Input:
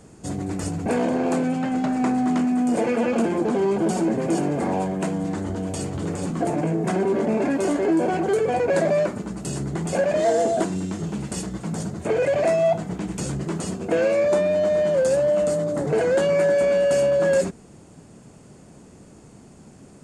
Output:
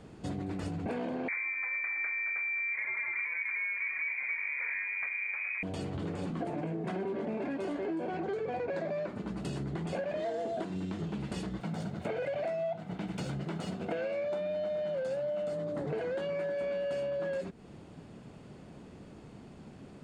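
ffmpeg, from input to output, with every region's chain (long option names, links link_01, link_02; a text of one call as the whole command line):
ffmpeg -i in.wav -filter_complex "[0:a]asettb=1/sr,asplit=3[link_01][link_02][link_03];[link_01]atrim=end=1.284[link_04];[link_02]atrim=start=1.28:end=5.63,asetpts=PTS-STARTPTS,afade=type=in:duration=0.004:curve=qsin,afade=type=out:start_time=4.346:duration=0.004:curve=qsin,lowpass=frequency=2200:width_type=q:width=0.5098,lowpass=frequency=2200:width_type=q:width=0.6013,lowpass=frequency=2200:width_type=q:width=0.9,lowpass=frequency=2200:width_type=q:width=2.563,afreqshift=-2600,lowshelf=frequency=210:gain=-7[link_05];[link_03]atrim=start=5.626[link_06];[link_04][link_05]acrossfade=duration=0.004:curve1=hsin:curve2=qsin[link_07];[link_07][link_06]acrossfade=duration=0.004:curve1=qsin:curve2=hsin,asettb=1/sr,asplit=3[link_08][link_09][link_10];[link_08]atrim=end=8.124[link_11];[link_09]atrim=start=8.12:end=9.09,asetpts=PTS-STARTPTS,afade=type=in:duration=0.004:curve=qsin,afade=type=out:start_time=0.966:duration=0.004:curve=qsin,lowpass=frequency=7900:width=0.5412,lowpass=frequency=7900:width=1.3066,equalizer=frequency=3000:width=6.1:gain=-5[link_12];[link_10]atrim=start=9.086[link_13];[link_11][link_12]acrossfade=duration=0.004:curve1=hsin:curve2=qsin[link_14];[link_14][link_13]acrossfade=duration=0.004:curve1=qsin:curve2=hsin,asettb=1/sr,asplit=3[link_15][link_16][link_17];[link_15]atrim=end=11.604[link_18];[link_16]atrim=start=11.6:end=15.53,asetpts=PTS-STARTPTS,afade=type=in:duration=0.004:curve=qsin,afade=type=out:start_time=3.926:duration=0.004:curve=qsin,aecho=1:1:1.4:0.34,atrim=end_sample=173313,aeval=exprs='sgn(val(0))*max(abs(val(0))-0.00422,0)':channel_layout=same,highpass=110[link_19];[link_17]atrim=start=15.526[link_20];[link_18][link_19]acrossfade=duration=0.004:curve1=hsin:curve2=qsin[link_21];[link_21][link_20]acrossfade=duration=0.004:curve1=qsin:curve2=hsin,highshelf=frequency=5100:width_type=q:width=1.5:gain=-10.5,acompressor=threshold=-30dB:ratio=6,volume=-3dB" out.wav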